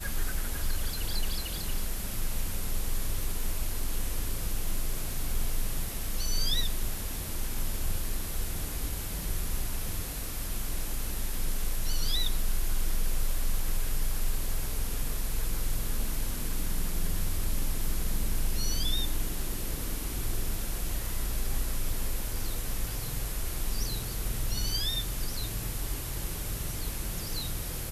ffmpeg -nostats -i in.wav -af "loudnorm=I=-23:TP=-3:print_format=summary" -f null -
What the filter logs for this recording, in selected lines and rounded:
Input Integrated:    -34.1 LUFS
Input True Peak:     -16.2 dBTP
Input LRA:             1.8 LU
Input Threshold:     -44.1 LUFS